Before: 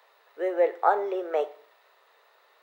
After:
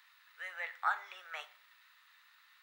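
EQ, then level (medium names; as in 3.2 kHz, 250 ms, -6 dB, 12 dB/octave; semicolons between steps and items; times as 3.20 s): high-pass 1.4 kHz 24 dB/octave; +1.0 dB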